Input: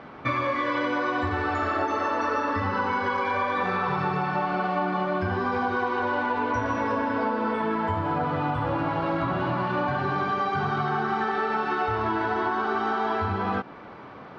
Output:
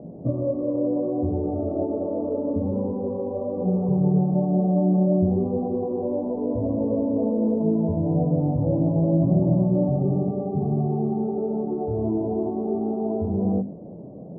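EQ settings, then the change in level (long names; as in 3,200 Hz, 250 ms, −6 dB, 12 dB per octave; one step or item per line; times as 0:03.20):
elliptic low-pass filter 630 Hz, stop band 60 dB
parametric band 170 Hz +11 dB 0.65 octaves
mains-hum notches 50/100/150/200/250 Hz
+4.5 dB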